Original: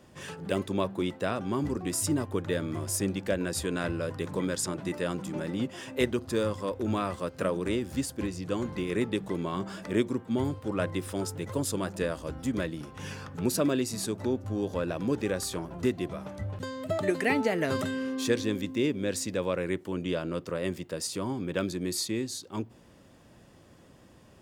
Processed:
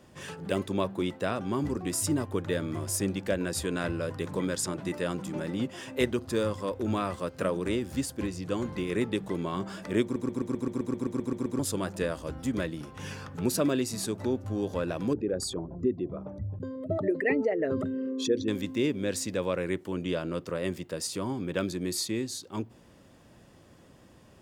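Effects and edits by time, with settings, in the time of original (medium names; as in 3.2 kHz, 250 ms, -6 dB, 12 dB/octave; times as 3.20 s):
10.03 s: stutter in place 0.13 s, 12 plays
15.13–18.48 s: resonances exaggerated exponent 2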